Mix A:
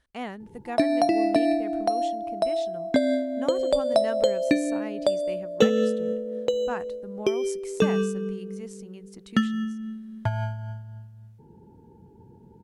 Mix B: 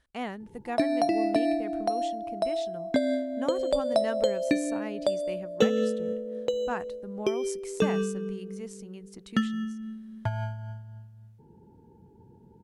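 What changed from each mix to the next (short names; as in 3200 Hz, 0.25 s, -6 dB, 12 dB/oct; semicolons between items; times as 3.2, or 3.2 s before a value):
background -3.5 dB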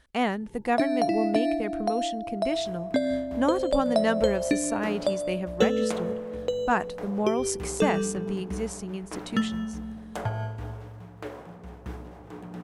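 speech +9.0 dB; second sound: unmuted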